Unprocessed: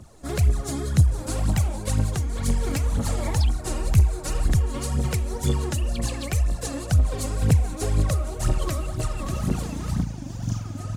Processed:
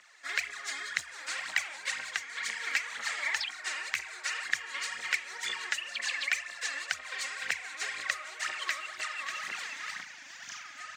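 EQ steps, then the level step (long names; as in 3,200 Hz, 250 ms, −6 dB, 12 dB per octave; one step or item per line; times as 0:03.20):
moving average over 4 samples
high-pass with resonance 1,900 Hz, resonance Q 3.8
+1.5 dB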